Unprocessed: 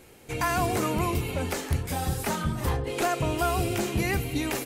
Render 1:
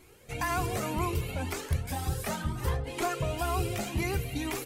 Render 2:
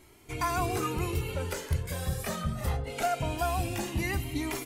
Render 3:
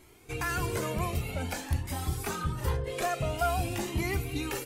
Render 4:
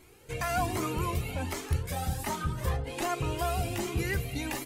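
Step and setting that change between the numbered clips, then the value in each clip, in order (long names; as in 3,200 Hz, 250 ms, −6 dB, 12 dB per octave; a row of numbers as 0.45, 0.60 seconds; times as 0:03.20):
flanger whose copies keep moving one way, speed: 2, 0.23, 0.5, 1.3 Hertz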